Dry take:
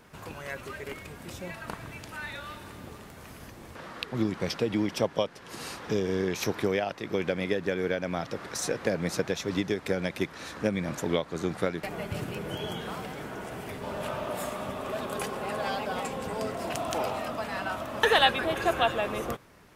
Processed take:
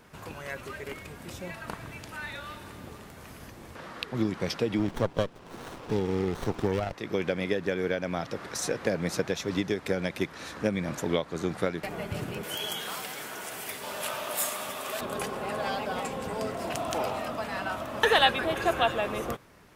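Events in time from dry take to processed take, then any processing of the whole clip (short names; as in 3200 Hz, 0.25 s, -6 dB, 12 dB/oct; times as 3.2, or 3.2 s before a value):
4.79–6.93 running maximum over 17 samples
12.43–15.01 tilt +4 dB/oct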